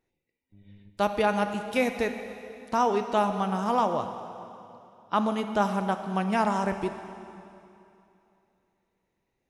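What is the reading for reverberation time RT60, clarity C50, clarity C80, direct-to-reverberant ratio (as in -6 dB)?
2.8 s, 8.0 dB, 9.0 dB, 7.0 dB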